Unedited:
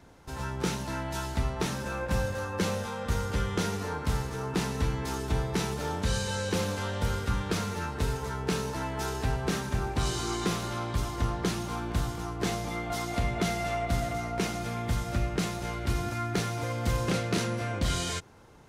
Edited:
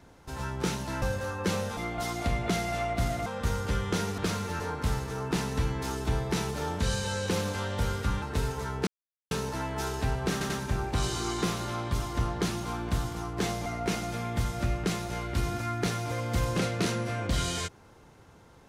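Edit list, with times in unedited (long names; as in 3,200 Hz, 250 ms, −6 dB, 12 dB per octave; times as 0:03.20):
0:01.02–0:02.16: remove
0:07.45–0:07.87: move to 0:03.83
0:08.52: splice in silence 0.44 s
0:09.53: stutter 0.09 s, 3 plays
0:12.69–0:14.18: move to 0:02.91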